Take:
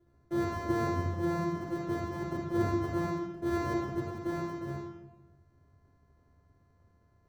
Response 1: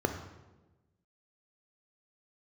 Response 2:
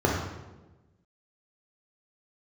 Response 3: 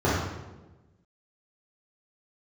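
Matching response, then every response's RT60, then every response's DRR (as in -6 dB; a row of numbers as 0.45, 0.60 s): 2; 1.1, 1.1, 1.1 s; 6.0, -2.5, -9.5 dB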